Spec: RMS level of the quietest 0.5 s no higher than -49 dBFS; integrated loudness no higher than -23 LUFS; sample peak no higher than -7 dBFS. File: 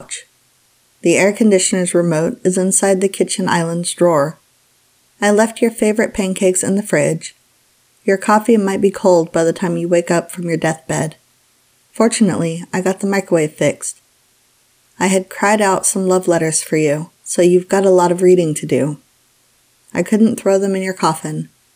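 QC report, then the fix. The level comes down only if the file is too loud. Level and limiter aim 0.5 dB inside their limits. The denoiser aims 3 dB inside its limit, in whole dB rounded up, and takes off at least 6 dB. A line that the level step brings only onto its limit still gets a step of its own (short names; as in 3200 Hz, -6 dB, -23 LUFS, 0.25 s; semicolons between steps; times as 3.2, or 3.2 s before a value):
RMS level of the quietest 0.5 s -56 dBFS: OK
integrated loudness -15.0 LUFS: fail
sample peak -2.0 dBFS: fail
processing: gain -8.5 dB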